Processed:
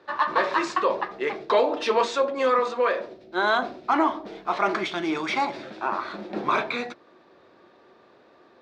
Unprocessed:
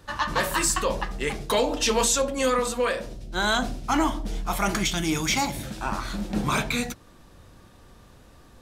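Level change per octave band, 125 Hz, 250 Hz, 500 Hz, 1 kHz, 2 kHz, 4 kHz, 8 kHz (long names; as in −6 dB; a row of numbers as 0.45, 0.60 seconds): −14.5, −3.0, +2.5, +3.5, +0.5, −5.5, −19.5 decibels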